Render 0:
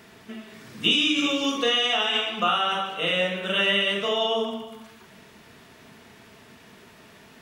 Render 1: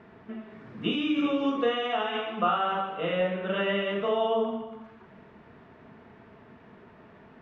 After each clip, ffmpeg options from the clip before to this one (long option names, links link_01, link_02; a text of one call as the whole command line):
ffmpeg -i in.wav -af "lowpass=1400" out.wav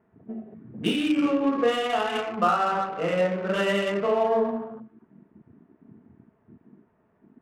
ffmpeg -i in.wav -af "afwtdn=0.0112,adynamicsmooth=sensitivity=7.5:basefreq=2000,volume=3.5dB" out.wav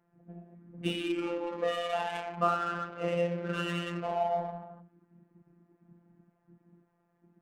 ffmpeg -i in.wav -af "afftfilt=real='hypot(re,im)*cos(PI*b)':imag='0':win_size=1024:overlap=0.75,volume=-4dB" out.wav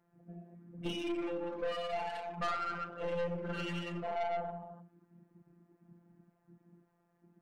ffmpeg -i in.wav -af "aeval=exprs='(tanh(35.5*val(0)+0.35)-tanh(0.35))/35.5':channel_layout=same" out.wav